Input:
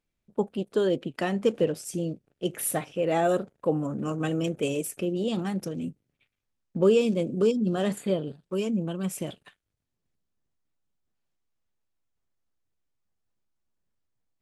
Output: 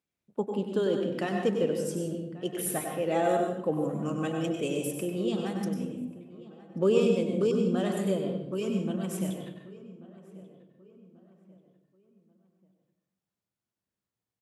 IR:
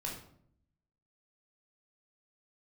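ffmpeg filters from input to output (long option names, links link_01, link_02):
-filter_complex "[0:a]highpass=110,asplit=2[link_01][link_02];[link_02]adelay=1137,lowpass=frequency=2200:poles=1,volume=-19dB,asplit=2[link_03][link_04];[link_04]adelay=1137,lowpass=frequency=2200:poles=1,volume=0.42,asplit=2[link_05][link_06];[link_06]adelay=1137,lowpass=frequency=2200:poles=1,volume=0.42[link_07];[link_01][link_03][link_05][link_07]amix=inputs=4:normalize=0,asplit=2[link_08][link_09];[1:a]atrim=start_sample=2205,asetrate=32193,aresample=44100,adelay=96[link_10];[link_09][link_10]afir=irnorm=-1:irlink=0,volume=-5.5dB[link_11];[link_08][link_11]amix=inputs=2:normalize=0,volume=-4dB"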